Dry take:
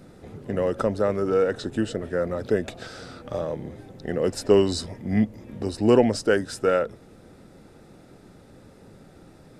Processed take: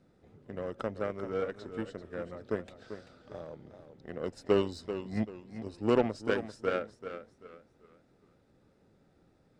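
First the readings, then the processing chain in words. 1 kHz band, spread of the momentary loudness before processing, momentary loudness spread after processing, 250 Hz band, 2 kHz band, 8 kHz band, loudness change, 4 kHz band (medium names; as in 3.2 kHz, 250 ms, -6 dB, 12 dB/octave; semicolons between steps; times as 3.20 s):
-8.0 dB, 17 LU, 19 LU, -10.5 dB, -8.0 dB, under -15 dB, -10.0 dB, -11.5 dB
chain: Bessel low-pass 6.3 kHz, order 2; Chebyshev shaper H 7 -21 dB, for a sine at -4.5 dBFS; modulated delay 390 ms, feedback 31%, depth 80 cents, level -10.5 dB; trim -8.5 dB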